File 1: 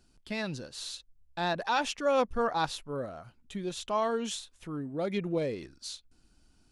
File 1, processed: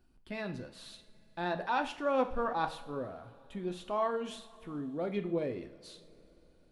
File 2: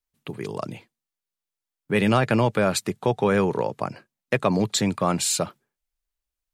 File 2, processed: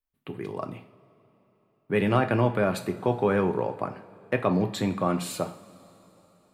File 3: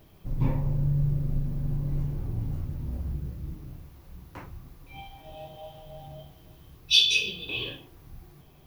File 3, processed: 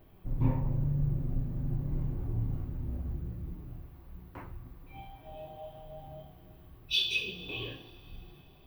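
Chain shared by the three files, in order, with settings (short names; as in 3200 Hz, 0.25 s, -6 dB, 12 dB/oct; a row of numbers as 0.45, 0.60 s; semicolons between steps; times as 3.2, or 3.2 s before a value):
bell 6500 Hz -14 dB 1.6 oct; two-slope reverb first 0.46 s, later 3.9 s, from -20 dB, DRR 6 dB; gain -3 dB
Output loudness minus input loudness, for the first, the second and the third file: -2.5, -3.5, -6.5 LU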